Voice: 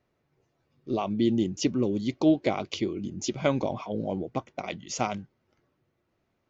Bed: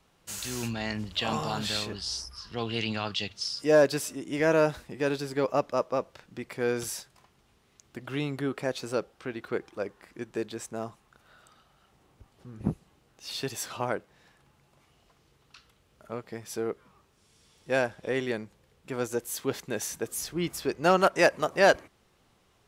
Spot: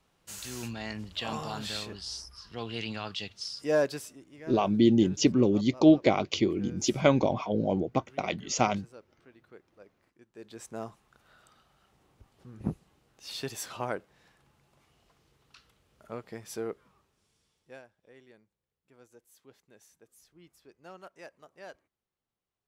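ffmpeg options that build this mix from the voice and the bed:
ffmpeg -i stem1.wav -i stem2.wav -filter_complex "[0:a]adelay=3600,volume=3dB[link_01];[1:a]volume=13dB,afade=type=out:start_time=3.79:duration=0.52:silence=0.158489,afade=type=in:start_time=10.34:duration=0.42:silence=0.125893,afade=type=out:start_time=16.55:duration=1.27:silence=0.0668344[link_02];[link_01][link_02]amix=inputs=2:normalize=0" out.wav

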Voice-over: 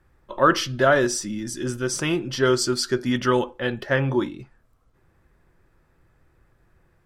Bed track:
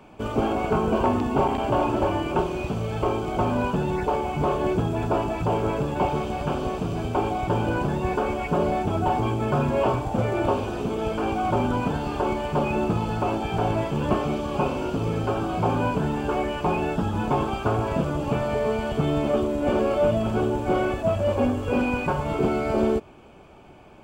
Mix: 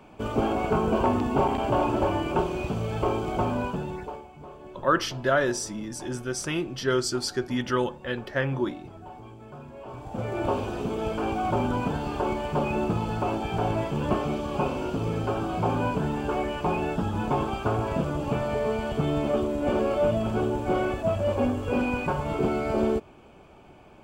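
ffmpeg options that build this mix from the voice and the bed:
ffmpeg -i stem1.wav -i stem2.wav -filter_complex "[0:a]adelay=4450,volume=-5dB[link_01];[1:a]volume=16.5dB,afade=type=out:start_time=3.3:duration=0.98:silence=0.112202,afade=type=in:start_time=9.86:duration=0.72:silence=0.125893[link_02];[link_01][link_02]amix=inputs=2:normalize=0" out.wav

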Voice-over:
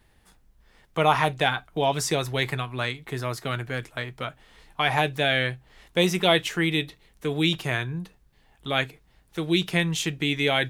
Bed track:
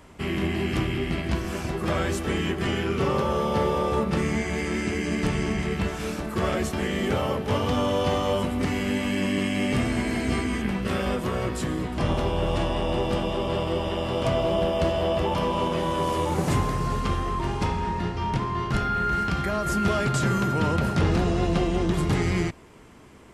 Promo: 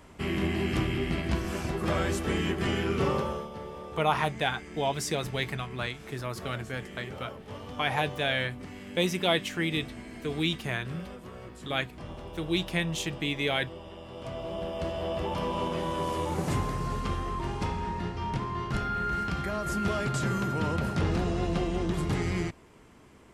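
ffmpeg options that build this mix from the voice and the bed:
ffmpeg -i stem1.wav -i stem2.wav -filter_complex "[0:a]adelay=3000,volume=-5.5dB[link_01];[1:a]volume=9dB,afade=type=out:start_time=3.07:duration=0.42:silence=0.188365,afade=type=in:start_time=14.1:duration=1.45:silence=0.266073[link_02];[link_01][link_02]amix=inputs=2:normalize=0" out.wav

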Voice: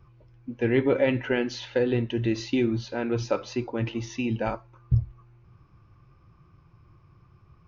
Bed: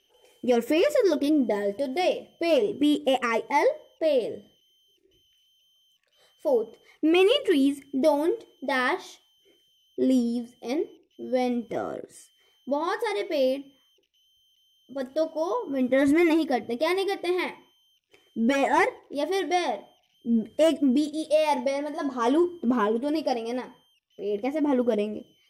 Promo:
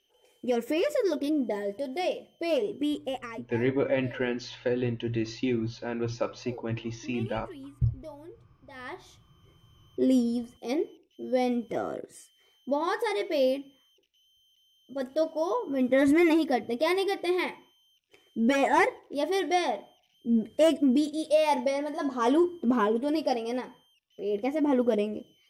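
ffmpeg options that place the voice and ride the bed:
ffmpeg -i stem1.wav -i stem2.wav -filter_complex "[0:a]adelay=2900,volume=-4dB[link_01];[1:a]volume=16.5dB,afade=type=out:start_time=2.71:duration=0.78:silence=0.133352,afade=type=in:start_time=8.73:duration=1.19:silence=0.0841395[link_02];[link_01][link_02]amix=inputs=2:normalize=0" out.wav

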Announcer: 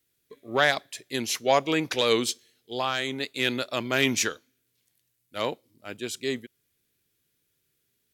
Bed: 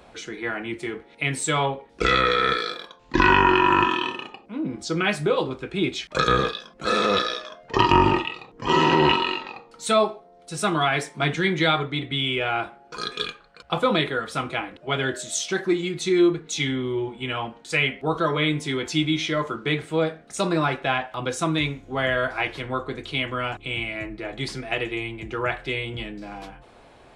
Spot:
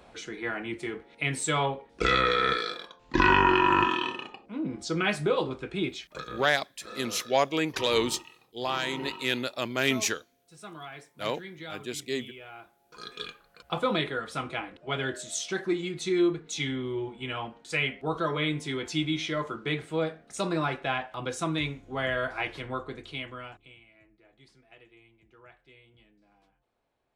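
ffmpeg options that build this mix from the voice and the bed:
ffmpeg -i stem1.wav -i stem2.wav -filter_complex "[0:a]adelay=5850,volume=-2.5dB[link_01];[1:a]volume=11dB,afade=type=out:start_time=5.69:duration=0.56:silence=0.141254,afade=type=in:start_time=12.74:duration=0.83:silence=0.177828,afade=type=out:start_time=22.7:duration=1.09:silence=0.0749894[link_02];[link_01][link_02]amix=inputs=2:normalize=0" out.wav

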